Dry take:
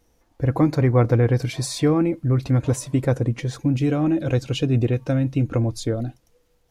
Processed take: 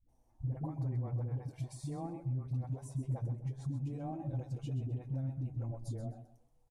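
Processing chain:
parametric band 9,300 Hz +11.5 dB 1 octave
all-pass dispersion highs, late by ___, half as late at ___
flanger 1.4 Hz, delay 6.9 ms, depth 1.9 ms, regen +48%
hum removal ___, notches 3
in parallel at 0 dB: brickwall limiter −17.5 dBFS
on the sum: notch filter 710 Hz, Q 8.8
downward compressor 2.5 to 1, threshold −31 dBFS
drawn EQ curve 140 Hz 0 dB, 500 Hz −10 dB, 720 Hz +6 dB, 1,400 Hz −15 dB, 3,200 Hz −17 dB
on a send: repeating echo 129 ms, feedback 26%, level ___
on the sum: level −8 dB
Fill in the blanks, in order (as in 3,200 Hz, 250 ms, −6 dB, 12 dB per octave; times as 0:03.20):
88 ms, 300 Hz, 198.2 Hz, −11 dB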